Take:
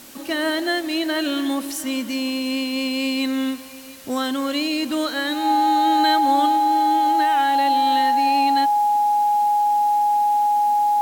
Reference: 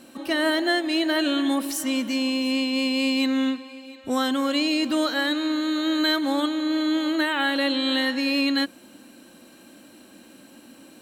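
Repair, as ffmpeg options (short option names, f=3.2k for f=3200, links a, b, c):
-af "bandreject=f=830:w=30,afwtdn=0.0071,asetnsamples=n=441:p=0,asendcmd='6.57 volume volume 3.5dB',volume=0dB"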